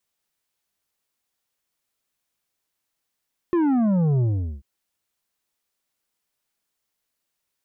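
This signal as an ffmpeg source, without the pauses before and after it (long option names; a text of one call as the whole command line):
ffmpeg -f lavfi -i "aevalsrc='0.126*clip((1.09-t)/0.41,0,1)*tanh(2.51*sin(2*PI*360*1.09/log(65/360)*(exp(log(65/360)*t/1.09)-1)))/tanh(2.51)':duration=1.09:sample_rate=44100" out.wav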